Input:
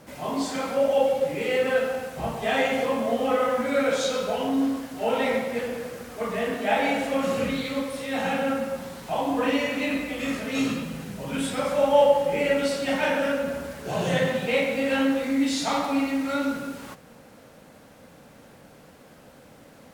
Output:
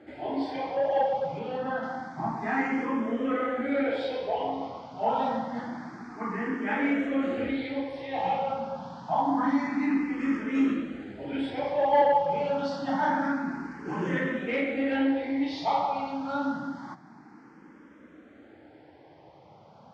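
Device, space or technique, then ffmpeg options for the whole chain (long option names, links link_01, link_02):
barber-pole phaser into a guitar amplifier: -filter_complex "[0:a]asplit=2[link_01][link_02];[link_02]afreqshift=0.27[link_03];[link_01][link_03]amix=inputs=2:normalize=1,asoftclip=type=tanh:threshold=-15.5dB,highpass=93,equalizer=frequency=320:width_type=q:width=4:gain=9,equalizer=frequency=510:width_type=q:width=4:gain=-6,equalizer=frequency=860:width_type=q:width=4:gain=7,equalizer=frequency=2700:width_type=q:width=4:gain=-9,equalizer=frequency=3900:width_type=q:width=4:gain=-8,lowpass=frequency=4500:width=0.5412,lowpass=frequency=4500:width=1.3066,asettb=1/sr,asplit=3[link_04][link_05][link_06];[link_04]atrim=end=1.394[link_07];[link_05]atrim=start=1.39:end=1.83,asetpts=PTS-STARTPTS,afade=type=in:duration=0.004:curve=qsin,afade=type=out:start_time=0.436:duration=0.004:curve=qsin,highshelf=frequency=4400:gain=-11.5[link_08];[link_06]atrim=start=1.826[link_09];[link_07][link_08]acrossfade=duration=0.004:curve1=hsin:curve2=qsin[link_10];[link_10][link_09]acrossfade=duration=0.004:curve1=qsin:curve2=hsin"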